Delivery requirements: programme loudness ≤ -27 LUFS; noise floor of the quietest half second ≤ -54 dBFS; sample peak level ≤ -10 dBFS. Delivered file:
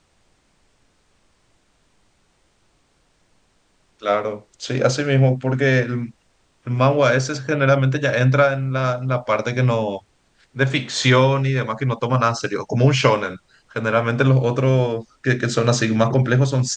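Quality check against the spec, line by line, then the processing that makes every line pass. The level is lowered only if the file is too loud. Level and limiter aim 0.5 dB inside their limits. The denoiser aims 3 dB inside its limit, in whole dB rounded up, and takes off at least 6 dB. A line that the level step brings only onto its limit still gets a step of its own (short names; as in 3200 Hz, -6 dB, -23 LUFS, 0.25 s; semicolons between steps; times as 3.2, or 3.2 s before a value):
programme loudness -19.0 LUFS: fail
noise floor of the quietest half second -62 dBFS: OK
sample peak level -3.0 dBFS: fail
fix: gain -8.5 dB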